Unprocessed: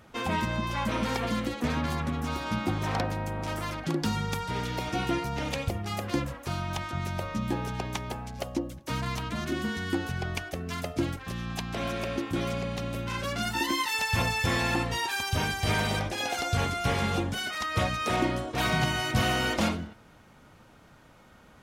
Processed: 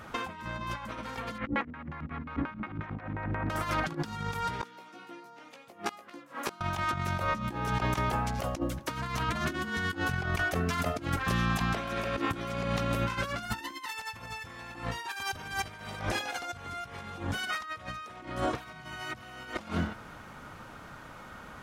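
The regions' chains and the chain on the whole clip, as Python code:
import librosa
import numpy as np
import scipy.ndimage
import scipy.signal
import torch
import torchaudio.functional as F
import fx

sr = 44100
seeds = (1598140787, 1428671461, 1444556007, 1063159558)

y = fx.chain(x, sr, fx.filter_lfo_lowpass(shape='square', hz=5.6, low_hz=270.0, high_hz=2100.0, q=2.2),
    fx.echo_feedback(ms=234, feedback_pct=27, wet_db=-16), at=(1.38, 3.5))
y = fx.chain(y, sr, fx.highpass(hz=200.0, slope=24),
    fx.gate_flip(shuts_db=-27.0, range_db=-27),
    fx.doubler(ms=17.0, db=-6.0), at=(4.61, 6.61))
y = fx.peak_eq(y, sr, hz=1300.0, db=7.0, octaves=1.2)
y = fx.over_compress(y, sr, threshold_db=-33.0, ratio=-0.5)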